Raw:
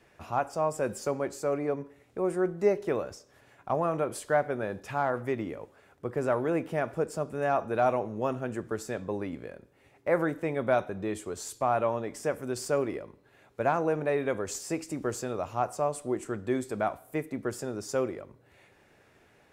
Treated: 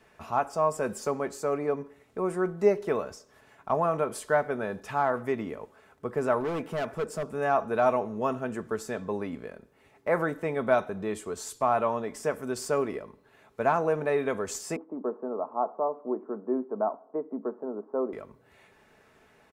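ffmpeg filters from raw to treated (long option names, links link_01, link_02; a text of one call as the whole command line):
ffmpeg -i in.wav -filter_complex "[0:a]asettb=1/sr,asplit=3[link_01][link_02][link_03];[link_01]atrim=end=6.404[link_04];[link_02]atrim=start=6.4:end=7.23,asetpts=PTS-STARTPTS,afade=type=in:duration=0.004:curve=qsin,afade=type=out:start_time=0.826:duration=0.004:curve=qsin,asoftclip=type=hard:threshold=-27.5dB[link_05];[link_03]atrim=start=7.226[link_06];[link_04][link_05]acrossfade=duration=0.004:curve1=hsin:curve2=qsin[link_07];[link_07][link_06]acrossfade=duration=0.004:curve1=qsin:curve2=hsin,asettb=1/sr,asplit=3[link_08][link_09][link_10];[link_08]atrim=end=14.764[link_11];[link_09]atrim=start=14.76:end=18.13,asetpts=PTS-STARTPTS,afade=type=in:duration=0.004:curve=qsin,afade=type=out:start_time=3.366:duration=0.004:curve=qsin,asuperpass=centerf=490:order=8:qfactor=0.56[link_12];[link_10]atrim=start=18.126[link_13];[link_11][link_12]acrossfade=duration=0.004:curve1=hsin:curve2=qsin[link_14];[link_14][link_13]acrossfade=duration=0.004:curve1=qsin:curve2=hsin,equalizer=frequency=1100:width_type=o:width=0.76:gain=4,aecho=1:1:4.6:0.37" out.wav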